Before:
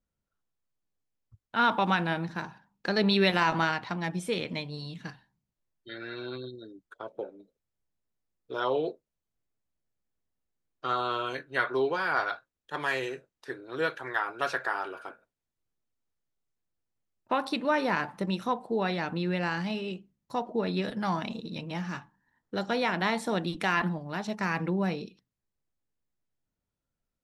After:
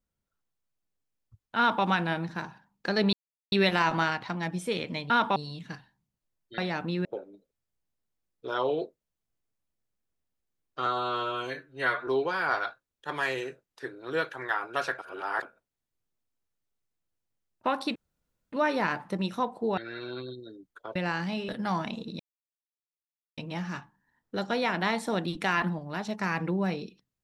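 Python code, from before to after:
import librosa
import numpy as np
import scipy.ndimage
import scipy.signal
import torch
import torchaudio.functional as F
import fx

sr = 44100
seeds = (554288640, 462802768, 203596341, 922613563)

y = fx.edit(x, sr, fx.duplicate(start_s=1.58, length_s=0.26, to_s=4.71),
    fx.insert_silence(at_s=3.13, length_s=0.39),
    fx.swap(start_s=5.93, length_s=1.18, other_s=18.86, other_length_s=0.47),
    fx.stretch_span(start_s=10.92, length_s=0.81, factor=1.5),
    fx.reverse_span(start_s=14.64, length_s=0.44),
    fx.insert_room_tone(at_s=17.61, length_s=0.57),
    fx.cut(start_s=19.86, length_s=1.0),
    fx.insert_silence(at_s=21.57, length_s=1.18), tone=tone)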